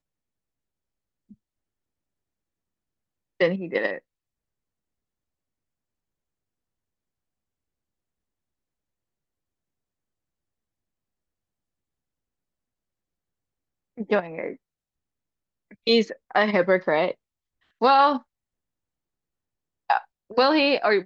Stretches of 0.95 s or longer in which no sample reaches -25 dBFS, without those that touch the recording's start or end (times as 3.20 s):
3.96–14.00 s
14.50–15.87 s
18.17–19.90 s